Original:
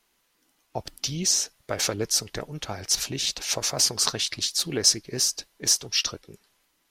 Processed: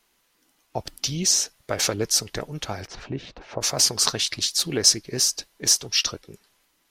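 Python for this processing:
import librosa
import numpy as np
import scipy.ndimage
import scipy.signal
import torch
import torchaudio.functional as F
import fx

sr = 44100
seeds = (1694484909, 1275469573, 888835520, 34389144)

y = fx.lowpass(x, sr, hz=fx.line((2.86, 1700.0), (3.6, 1000.0)), slope=12, at=(2.86, 3.6), fade=0.02)
y = y * librosa.db_to_amplitude(2.5)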